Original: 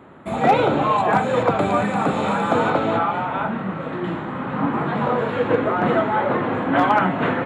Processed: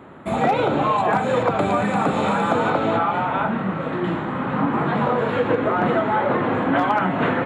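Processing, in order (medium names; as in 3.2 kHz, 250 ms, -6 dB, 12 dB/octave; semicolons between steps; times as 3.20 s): compression, threshold -18 dBFS, peak gain reduction 7.5 dB; trim +2.5 dB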